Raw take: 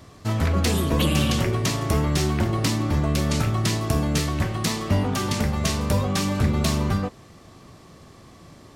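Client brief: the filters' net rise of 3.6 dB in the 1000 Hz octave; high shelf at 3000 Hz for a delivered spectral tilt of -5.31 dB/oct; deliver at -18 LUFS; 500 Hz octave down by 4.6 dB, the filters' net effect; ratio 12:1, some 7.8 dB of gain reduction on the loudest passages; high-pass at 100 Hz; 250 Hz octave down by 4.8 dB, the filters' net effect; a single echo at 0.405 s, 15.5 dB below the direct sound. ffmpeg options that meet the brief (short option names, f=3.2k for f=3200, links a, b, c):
-af "highpass=100,equalizer=f=250:t=o:g=-5,equalizer=f=500:t=o:g=-6.5,equalizer=f=1k:t=o:g=7,highshelf=f=3k:g=-7,acompressor=threshold=-28dB:ratio=12,aecho=1:1:405:0.168,volume=14.5dB"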